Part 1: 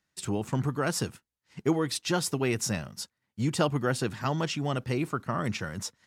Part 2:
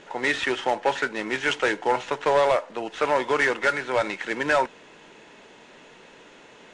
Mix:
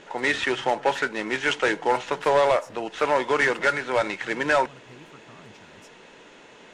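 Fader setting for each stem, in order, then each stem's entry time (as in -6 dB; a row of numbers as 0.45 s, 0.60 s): -19.5 dB, +0.5 dB; 0.00 s, 0.00 s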